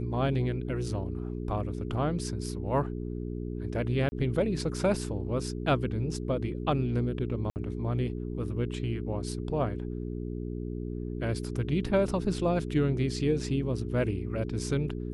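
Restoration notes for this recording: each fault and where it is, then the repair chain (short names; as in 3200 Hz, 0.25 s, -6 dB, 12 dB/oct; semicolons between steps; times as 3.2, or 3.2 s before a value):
hum 60 Hz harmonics 7 -35 dBFS
4.09–4.12 gap 30 ms
7.5–7.56 gap 59 ms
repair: de-hum 60 Hz, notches 7; interpolate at 4.09, 30 ms; interpolate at 7.5, 59 ms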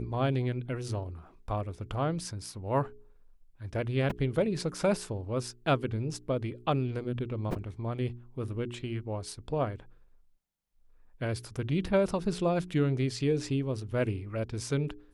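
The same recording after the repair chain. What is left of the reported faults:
none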